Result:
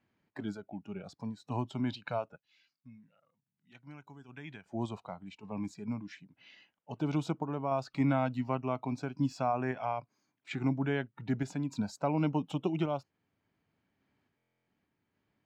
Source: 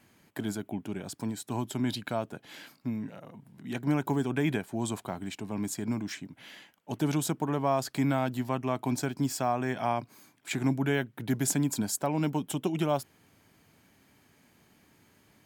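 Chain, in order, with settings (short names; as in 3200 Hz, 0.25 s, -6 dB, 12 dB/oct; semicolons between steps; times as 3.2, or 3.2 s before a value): spectral noise reduction 13 dB; 2.36–4.66 passive tone stack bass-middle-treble 5-5-5; random-step tremolo; air absorption 190 m; stuck buffer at 14.37, samples 1024, times 12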